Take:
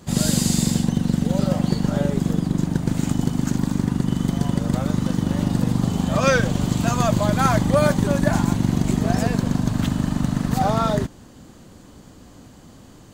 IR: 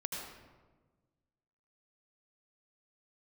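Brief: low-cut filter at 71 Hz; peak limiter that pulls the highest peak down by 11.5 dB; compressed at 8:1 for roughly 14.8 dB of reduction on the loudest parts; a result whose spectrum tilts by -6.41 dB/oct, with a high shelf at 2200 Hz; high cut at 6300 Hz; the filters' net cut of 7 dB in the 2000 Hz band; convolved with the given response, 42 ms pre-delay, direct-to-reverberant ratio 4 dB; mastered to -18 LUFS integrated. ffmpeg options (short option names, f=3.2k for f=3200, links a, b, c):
-filter_complex "[0:a]highpass=71,lowpass=6.3k,equalizer=f=2k:t=o:g=-7.5,highshelf=f=2.2k:g=-5,acompressor=threshold=-31dB:ratio=8,alimiter=level_in=7.5dB:limit=-24dB:level=0:latency=1,volume=-7.5dB,asplit=2[a][b];[1:a]atrim=start_sample=2205,adelay=42[c];[b][c]afir=irnorm=-1:irlink=0,volume=-5.5dB[d];[a][d]amix=inputs=2:normalize=0,volume=22dB"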